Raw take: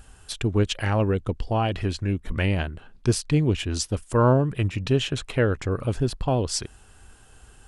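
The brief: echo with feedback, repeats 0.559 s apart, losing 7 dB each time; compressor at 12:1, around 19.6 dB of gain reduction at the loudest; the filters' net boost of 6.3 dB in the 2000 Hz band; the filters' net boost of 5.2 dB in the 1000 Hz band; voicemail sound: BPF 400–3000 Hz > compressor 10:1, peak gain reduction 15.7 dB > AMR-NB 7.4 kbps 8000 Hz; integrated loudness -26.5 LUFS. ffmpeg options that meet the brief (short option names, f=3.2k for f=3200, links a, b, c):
-af "equalizer=f=1k:t=o:g=5,equalizer=f=2k:t=o:g=7.5,acompressor=threshold=-33dB:ratio=12,highpass=400,lowpass=3k,aecho=1:1:559|1118|1677|2236|2795:0.447|0.201|0.0905|0.0407|0.0183,acompressor=threshold=-48dB:ratio=10,volume=28dB" -ar 8000 -c:a libopencore_amrnb -b:a 7400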